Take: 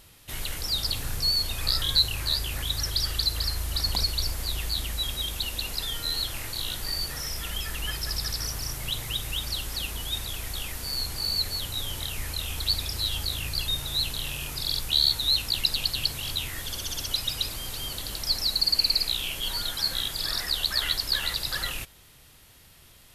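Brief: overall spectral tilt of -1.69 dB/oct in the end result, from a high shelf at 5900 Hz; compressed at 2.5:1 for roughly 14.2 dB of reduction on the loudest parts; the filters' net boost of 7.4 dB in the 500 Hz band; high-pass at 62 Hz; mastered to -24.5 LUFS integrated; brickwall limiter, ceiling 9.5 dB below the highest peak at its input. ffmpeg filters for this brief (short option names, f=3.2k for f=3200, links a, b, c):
-af "highpass=62,equalizer=f=500:t=o:g=9,highshelf=f=5.9k:g=4,acompressor=threshold=-39dB:ratio=2.5,volume=13dB,alimiter=limit=-16dB:level=0:latency=1"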